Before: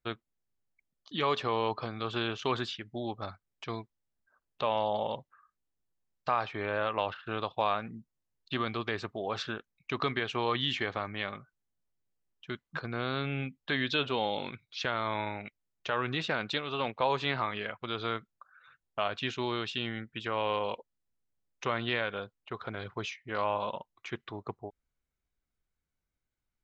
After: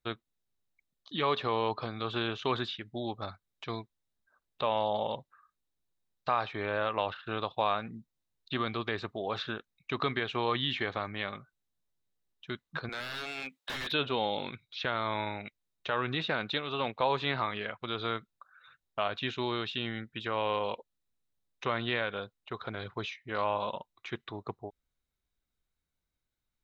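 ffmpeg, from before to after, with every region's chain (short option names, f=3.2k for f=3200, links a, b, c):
-filter_complex "[0:a]asettb=1/sr,asplit=3[a][b][c];[a]atrim=end=12.894[d];[b]atrim=start=12.89:end=13.92,asetpts=PTS-STARTPTS,afade=t=in:d=0.004:c=qsin,afade=t=out:st=1.026:d=0.004:c=qsin,highpass=560,acontrast=61,aeval=exprs='0.0335*(abs(mod(val(0)/0.0335+3,4)-2)-1)':c=same[e];[c]atrim=start=13.916[f];[d][e]acrossfade=d=0.004:c1=hsin:c2=qsin[g];[g][f]acrossfade=d=0.004:c1=qsin:c2=hsin,acrossover=split=3700[h][i];[i]acompressor=threshold=-54dB:ratio=4:attack=1:release=60[j];[h][j]amix=inputs=2:normalize=0,equalizer=f=3.8k:t=o:w=0.22:g=8"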